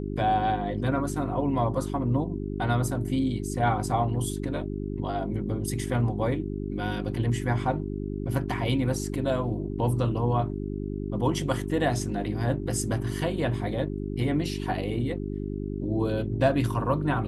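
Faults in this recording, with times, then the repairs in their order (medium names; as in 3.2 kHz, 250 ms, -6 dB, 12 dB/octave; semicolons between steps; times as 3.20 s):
hum 50 Hz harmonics 8 -32 dBFS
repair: de-hum 50 Hz, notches 8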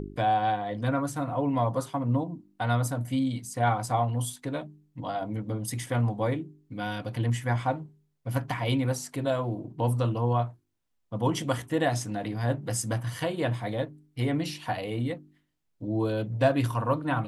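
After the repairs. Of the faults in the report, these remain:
nothing left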